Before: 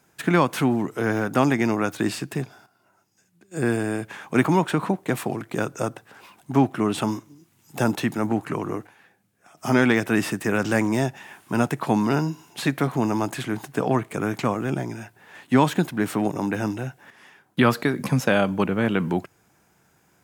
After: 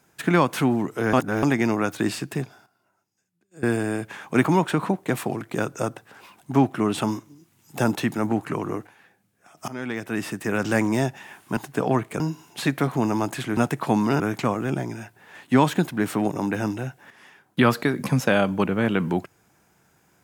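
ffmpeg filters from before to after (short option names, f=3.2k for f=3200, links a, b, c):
-filter_complex "[0:a]asplit=9[a][b][c][d][e][f][g][h][i];[a]atrim=end=1.132[j];[b]atrim=start=1.128:end=1.432,asetpts=PTS-STARTPTS,areverse[k];[c]atrim=start=1.428:end=3.63,asetpts=PTS-STARTPTS,afade=t=out:st=0.972:d=1.23:c=qua:silence=0.16788[l];[d]atrim=start=3.63:end=9.68,asetpts=PTS-STARTPTS,afade=t=in:d=0.004:c=hsin:silence=0.16788,afade=t=out:st=6.046:d=0.004:c=hsin:silence=0.1[m];[e]atrim=start=9.68:end=11.572,asetpts=PTS-STARTPTS,afade=t=in:d=1.09:silence=0.1[n];[f]atrim=start=13.568:end=14.202[o];[g]atrim=start=12.198:end=13.572[p];[h]atrim=start=11.568:end=12.202[q];[i]atrim=start=14.198[r];[j][k]acrossfade=d=0.004:c1=hsin:c2=hsin[s];[l][m][n]concat=n=3:v=0:a=1[t];[s][t]acrossfade=d=0.004:c1=hsin:c2=hsin[u];[u][o]acrossfade=d=0.004:c1=hsin:c2=hsin[v];[v][p]acrossfade=d=0.004:c1=hsin:c2=hsin[w];[w][q]acrossfade=d=0.004:c1=hsin:c2=hsin[x];[x][r]acrossfade=d=0.004:c1=hsin:c2=hsin"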